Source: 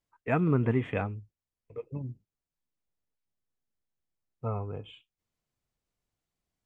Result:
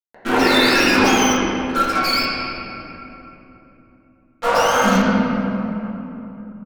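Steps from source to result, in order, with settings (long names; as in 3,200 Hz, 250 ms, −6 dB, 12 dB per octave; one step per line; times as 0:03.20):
frequency axis turned over on the octave scale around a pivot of 800 Hz
downward compressor, threshold −44 dBFS, peak gain reduction 16 dB
0:02.07–0:04.86: low-pass filter 2,700 Hz 6 dB per octave
multiband delay without the direct sound lows, highs 130 ms, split 2,000 Hz
fuzz pedal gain 54 dB, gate −58 dBFS
convolution reverb RT60 3.3 s, pre-delay 4 ms, DRR −11.5 dB
level −8.5 dB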